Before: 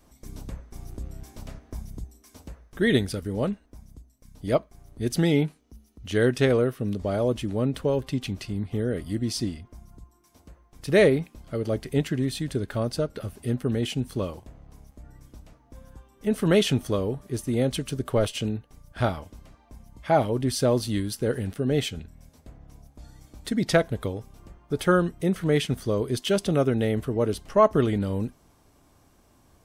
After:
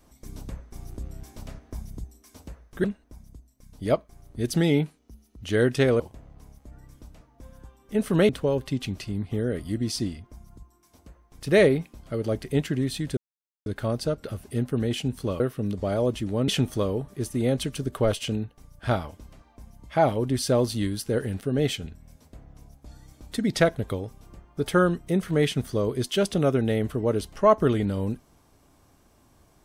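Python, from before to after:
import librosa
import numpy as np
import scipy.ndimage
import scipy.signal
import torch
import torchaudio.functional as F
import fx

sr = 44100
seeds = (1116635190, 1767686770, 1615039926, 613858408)

y = fx.edit(x, sr, fx.cut(start_s=2.84, length_s=0.62),
    fx.swap(start_s=6.62, length_s=1.08, other_s=14.32, other_length_s=2.29),
    fx.insert_silence(at_s=12.58, length_s=0.49), tone=tone)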